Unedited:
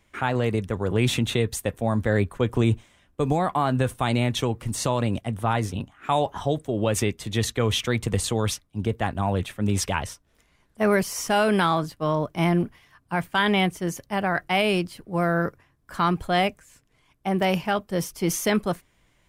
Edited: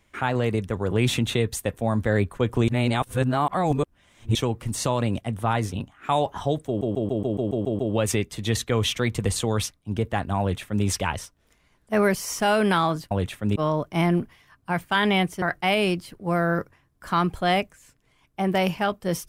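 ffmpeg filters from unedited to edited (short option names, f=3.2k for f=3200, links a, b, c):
-filter_complex "[0:a]asplit=14[a][b][c][d][e][f][g][h][i][j][k][l][m][n];[a]atrim=end=2.682[o];[b]atrim=start=2.678:end=4.352,asetpts=PTS-STARTPTS,areverse[p];[c]atrim=start=4.348:end=6.812[q];[d]atrim=start=6.668:end=6.812[r];[e]atrim=start=6.668:end=6.812[s];[f]atrim=start=6.668:end=6.812[t];[g]atrim=start=6.668:end=6.812[u];[h]atrim=start=6.668:end=6.812[v];[i]atrim=start=6.668:end=6.812[w];[j]atrim=start=6.668:end=6.812[x];[k]atrim=start=6.668:end=11.992[y];[l]atrim=start=9.278:end=9.732[z];[m]atrim=start=11.988:end=13.852[aa];[n]atrim=start=14.288[ab];[o][p]acrossfade=d=0.004:c1=hsin:c2=hsin[ac];[ac][q]acrossfade=d=0.004:c1=hsin:c2=hsin[ad];[ad][r]acrossfade=d=0.004:c1=hsin:c2=hsin[ae];[ae][s]acrossfade=d=0.004:c1=hsin:c2=hsin[af];[af][t]acrossfade=d=0.004:c1=hsin:c2=hsin[ag];[ag][u]acrossfade=d=0.004:c1=hsin:c2=hsin[ah];[ah][v]acrossfade=d=0.004:c1=hsin:c2=hsin[ai];[ai][w]acrossfade=d=0.004:c1=hsin:c2=hsin[aj];[aj][x]acrossfade=d=0.004:c1=hsin:c2=hsin[ak];[ak][y]acrossfade=d=0.004:c1=hsin:c2=hsin[al];[al][z]acrossfade=d=0.004:c1=hsin:c2=hsin[am];[am][aa]acrossfade=d=0.004:c1=hsin:c2=hsin[an];[an][ab]acrossfade=d=0.004:c1=hsin:c2=hsin"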